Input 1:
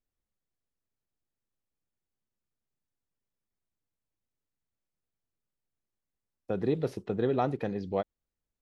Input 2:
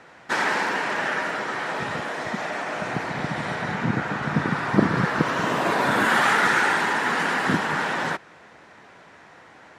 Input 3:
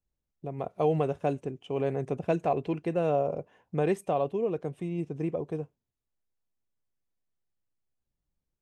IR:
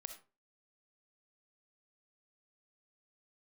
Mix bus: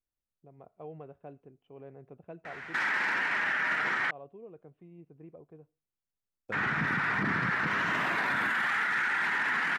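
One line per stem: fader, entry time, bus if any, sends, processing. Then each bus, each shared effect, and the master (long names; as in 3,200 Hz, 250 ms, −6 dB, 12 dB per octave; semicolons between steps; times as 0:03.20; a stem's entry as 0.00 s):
−8.5 dB, 0.00 s, no send, leveller curve on the samples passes 1; compressor whose output falls as the input rises −30 dBFS
−1.0 dB, 2.45 s, muted 0:04.11–0:06.52, no send, octave-band graphic EQ 500/2,000/8,000 Hz −7/+11/−4 dB
−20.0 dB, 0.00 s, send −12 dB, low-pass filter 2,200 Hz 12 dB per octave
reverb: on, RT60 0.35 s, pre-delay 20 ms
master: parametric band 1,400 Hz +3 dB 0.37 octaves; brickwall limiter −21.5 dBFS, peak gain reduction 18.5 dB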